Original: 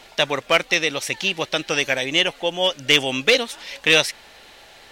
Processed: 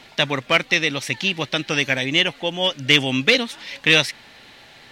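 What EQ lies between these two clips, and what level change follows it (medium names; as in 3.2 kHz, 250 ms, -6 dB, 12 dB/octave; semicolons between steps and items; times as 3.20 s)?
graphic EQ 125/250/1000/2000/4000 Hz +12/+9/+3/+6/+5 dB; -5.5 dB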